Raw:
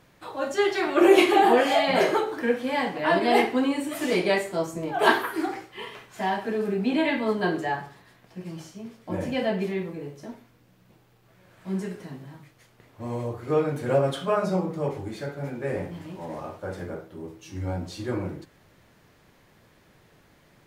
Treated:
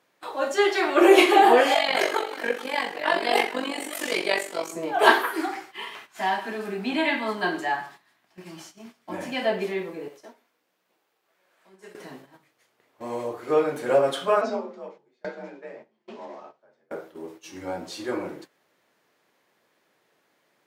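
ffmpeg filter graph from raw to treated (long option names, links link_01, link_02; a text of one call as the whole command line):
ffmpeg -i in.wav -filter_complex "[0:a]asettb=1/sr,asplit=3[link_01][link_02][link_03];[link_01]atrim=end=1.744[link_04];[link_02]atrim=start=1.74:end=4.72,asetpts=PTS-STARTPTS,afade=type=in:duration=0.004:curve=qsin,afade=type=out:start_time=2.976:duration=0.004:curve=qsin,tiltshelf=frequency=1200:gain=-4,aecho=1:1:439:0.141,atrim=end_sample=131418,tremolo=f=47:d=0.788[link_05];[link_03]atrim=start=4.716[link_06];[link_04][link_05]acrossfade=duration=0.004:curve1=hsin:curve2=qsin[link_07];[link_07][link_06]acrossfade=duration=0.004:curve1=qsin:curve2=hsin,asettb=1/sr,asplit=3[link_08][link_09][link_10];[link_08]atrim=end=5.414[link_11];[link_09]atrim=start=5.41:end=9.45,asetpts=PTS-STARTPTS,afade=type=in:duration=0.004:curve=qsin,afade=type=out:start_time=4.036:duration=0.004:curve=qsin,equalizer=frequency=480:width_type=o:width=0.5:gain=-12,aecho=1:1:114:0.133,atrim=end_sample=178164[link_12];[link_10]atrim=start=9.446[link_13];[link_11][link_12]acrossfade=duration=0.004:curve1=hsin:curve2=qsin[link_14];[link_14][link_13]acrossfade=duration=0.004:curve1=qsin:curve2=hsin,asettb=1/sr,asplit=3[link_15][link_16][link_17];[link_15]atrim=end=10.084[link_18];[link_16]atrim=start=10.08:end=11.95,asetpts=PTS-STARTPTS,afade=type=in:duration=0.004:curve=qsin,afade=type=out:start_time=1.866:duration=0.004:curve=qsin,highpass=150,acompressor=threshold=-38dB:ratio=4:attack=3.2:release=140:knee=1:detection=peak,lowshelf=frequency=280:gain=-9.5[link_19];[link_17]atrim=start=11.946[link_20];[link_18][link_19]acrossfade=duration=0.004:curve1=hsin:curve2=qsin[link_21];[link_21][link_20]acrossfade=duration=0.004:curve1=qsin:curve2=hsin,asettb=1/sr,asplit=3[link_22][link_23][link_24];[link_22]atrim=end=14.414[link_25];[link_23]atrim=start=14.41:end=16.91,asetpts=PTS-STARTPTS,afade=type=in:duration=0.004:curve=qsin,afade=type=out:start_time=2.496:duration=0.004:curve=qsin,lowpass=frequency=6200:width=0.5412,lowpass=frequency=6200:width=1.3066,afreqshift=47,aeval=exprs='val(0)*pow(10,-25*if(lt(mod(1.2*n/s,1),2*abs(1.2)/1000),1-mod(1.2*n/s,1)/(2*abs(1.2)/1000),(mod(1.2*n/s,1)-2*abs(1.2)/1000)/(1-2*abs(1.2)/1000))/20)':channel_layout=same[link_26];[link_24]atrim=start=16.906[link_27];[link_25][link_26]acrossfade=duration=0.004:curve1=hsin:curve2=qsin[link_28];[link_28][link_27]acrossfade=duration=0.004:curve1=qsin:curve2=hsin,highpass=350,agate=range=-11dB:threshold=-48dB:ratio=16:detection=peak,volume=3.5dB" out.wav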